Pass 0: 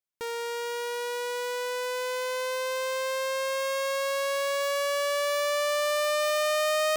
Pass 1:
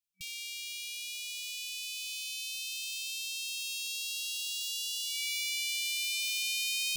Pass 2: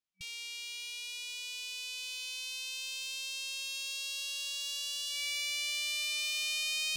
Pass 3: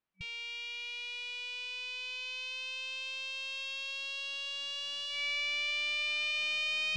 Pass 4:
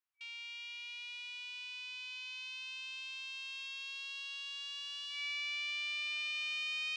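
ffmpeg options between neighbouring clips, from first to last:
-af "afftfilt=real='re*(1-between(b*sr/4096,190,2300))':imag='im*(1-between(b*sr/4096,190,2300))':win_size=4096:overlap=0.75,volume=1dB"
-af "adynamicsmooth=sensitivity=3.5:basefreq=7.1k"
-af "lowpass=2.1k,volume=8.5dB"
-af "highpass=f=910:w=0.5412,highpass=f=910:w=1.3066,volume=-5dB"

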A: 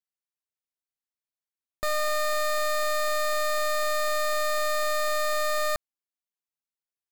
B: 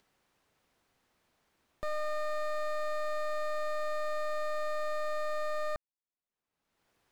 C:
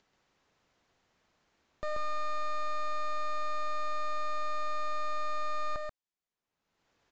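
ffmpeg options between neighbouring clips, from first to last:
-af "lowpass=f=1.2k:p=1,acompressor=mode=upward:threshold=-42dB:ratio=2.5,volume=-5.5dB"
-af "aresample=16000,aresample=44100,aecho=1:1:134:0.631"

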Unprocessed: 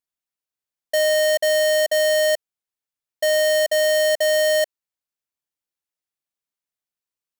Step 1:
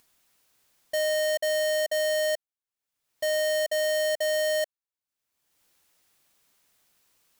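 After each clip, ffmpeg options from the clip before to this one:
-af "acompressor=mode=upward:threshold=-36dB:ratio=2.5,volume=-7.5dB"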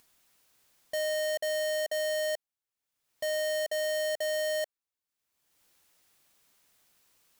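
-af "asoftclip=type=hard:threshold=-30dB"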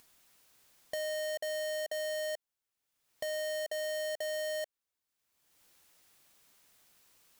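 -af "acompressor=threshold=-38dB:ratio=10,volume=2dB"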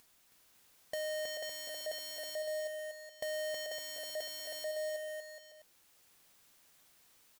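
-af "aecho=1:1:320|560|740|875|976.2:0.631|0.398|0.251|0.158|0.1,volume=-2dB"

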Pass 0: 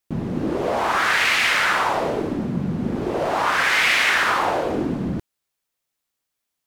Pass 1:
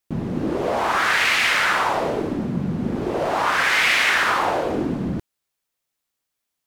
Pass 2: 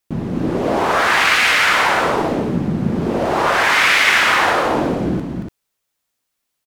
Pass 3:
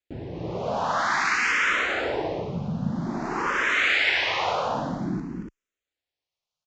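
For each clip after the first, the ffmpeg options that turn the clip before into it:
-af anull
-af "aecho=1:1:227.4|288.6:0.562|0.501,volume=3dB"
-filter_complex "[0:a]aresample=16000,aresample=44100,asplit=2[a][b];[b]afreqshift=0.51[c];[a][c]amix=inputs=2:normalize=1,volume=-7dB"

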